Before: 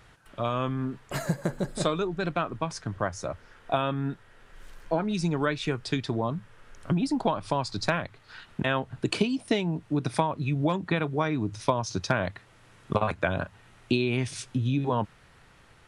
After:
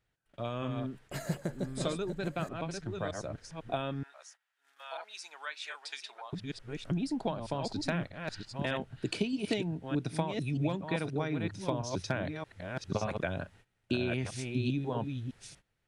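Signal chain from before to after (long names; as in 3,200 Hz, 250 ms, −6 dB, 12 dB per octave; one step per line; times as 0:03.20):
delay that plays each chunk backwards 622 ms, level −5 dB
0:04.03–0:06.33: high-pass filter 840 Hz 24 dB per octave
noise gate −49 dBFS, range −18 dB
parametric band 1,100 Hz −7 dB 0.69 octaves
level −6.5 dB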